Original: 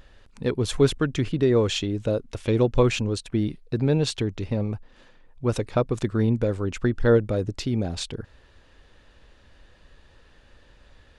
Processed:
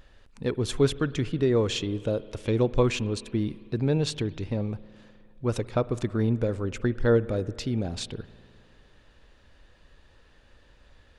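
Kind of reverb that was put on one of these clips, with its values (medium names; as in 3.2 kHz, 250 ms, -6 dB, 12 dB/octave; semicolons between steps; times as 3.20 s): spring tank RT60 2.4 s, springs 52 ms, chirp 60 ms, DRR 17.5 dB; trim -3 dB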